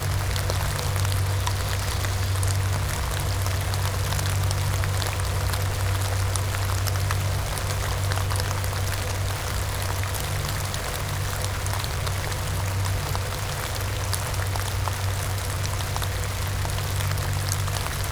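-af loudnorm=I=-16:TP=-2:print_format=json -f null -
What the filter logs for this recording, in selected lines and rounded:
"input_i" : "-26.2",
"input_tp" : "-4.6",
"input_lra" : "1.9",
"input_thresh" : "-36.2",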